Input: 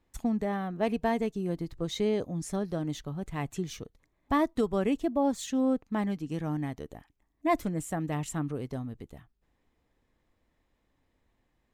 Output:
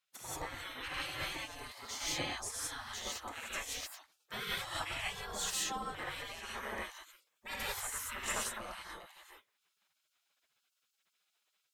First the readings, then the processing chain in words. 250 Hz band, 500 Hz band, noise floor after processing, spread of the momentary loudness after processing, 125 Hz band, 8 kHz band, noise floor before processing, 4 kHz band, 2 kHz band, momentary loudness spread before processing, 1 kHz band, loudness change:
−23.0 dB, −16.5 dB, −82 dBFS, 11 LU, −17.5 dB, +5.5 dB, −75 dBFS, +5.5 dB, +2.5 dB, 10 LU, −7.5 dB, −8.0 dB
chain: reverb whose tail is shaped and stops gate 210 ms rising, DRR −8 dB
pitch vibrato 13 Hz 13 cents
gate on every frequency bin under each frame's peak −25 dB weak

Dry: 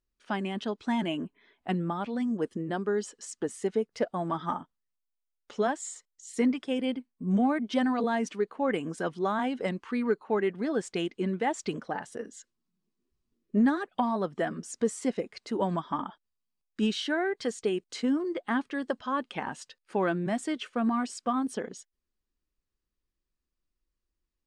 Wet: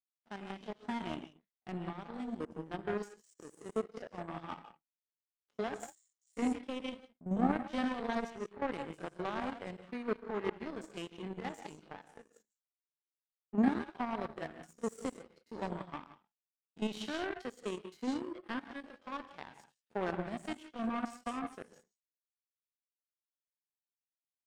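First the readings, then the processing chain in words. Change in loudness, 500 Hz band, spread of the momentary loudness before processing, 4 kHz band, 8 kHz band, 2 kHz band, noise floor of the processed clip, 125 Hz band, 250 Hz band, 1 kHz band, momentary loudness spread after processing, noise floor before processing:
−8.5 dB, −10.0 dB, 9 LU, −9.5 dB, −14.0 dB, −8.5 dB, below −85 dBFS, −9.0 dB, −8.5 dB, −8.5 dB, 15 LU, −84 dBFS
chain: spectrum averaged block by block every 50 ms
reverb whose tail is shaped and stops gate 200 ms rising, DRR 4.5 dB
power curve on the samples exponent 2

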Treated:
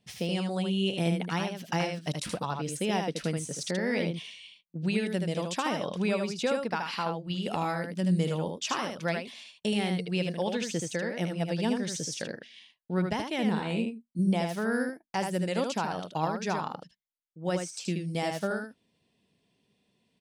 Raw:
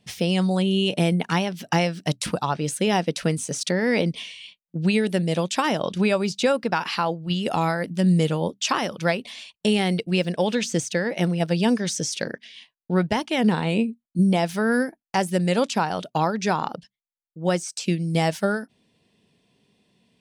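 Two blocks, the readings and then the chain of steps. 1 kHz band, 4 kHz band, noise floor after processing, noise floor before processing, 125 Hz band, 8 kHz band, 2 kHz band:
−7.5 dB, −7.5 dB, −75 dBFS, below −85 dBFS, −7.5 dB, −7.5 dB, −7.5 dB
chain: single-tap delay 77 ms −5 dB
level −8.5 dB

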